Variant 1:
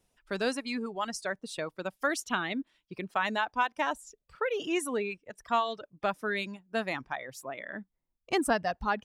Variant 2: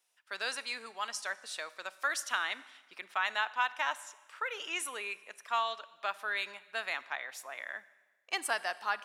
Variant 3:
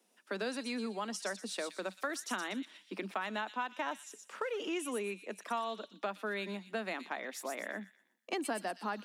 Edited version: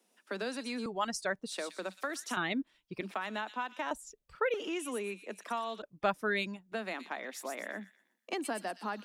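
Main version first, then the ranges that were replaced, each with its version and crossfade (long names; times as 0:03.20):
3
0:00.86–0:01.52: punch in from 1
0:02.37–0:03.01: punch in from 1
0:03.91–0:04.54: punch in from 1
0:05.82–0:06.72: punch in from 1
not used: 2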